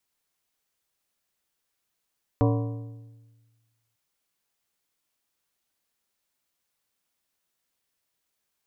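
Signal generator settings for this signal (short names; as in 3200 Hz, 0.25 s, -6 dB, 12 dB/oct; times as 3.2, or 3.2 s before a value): metal hit plate, lowest mode 114 Hz, modes 8, decay 1.47 s, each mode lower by 3 dB, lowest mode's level -18.5 dB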